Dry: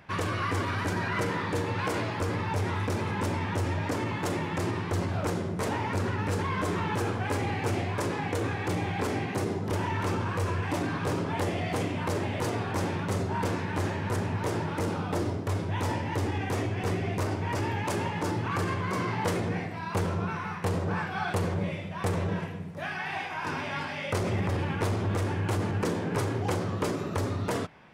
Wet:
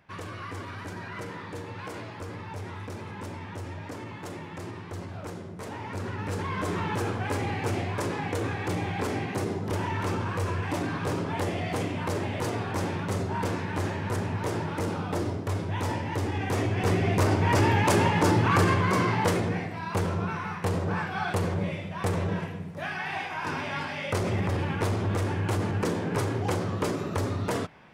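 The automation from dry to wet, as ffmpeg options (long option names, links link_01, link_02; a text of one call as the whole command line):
ffmpeg -i in.wav -af "volume=8dB,afade=type=in:start_time=5.66:duration=1.14:silence=0.375837,afade=type=in:start_time=16.29:duration=1.29:silence=0.398107,afade=type=out:start_time=18.53:duration=1.06:silence=0.446684" out.wav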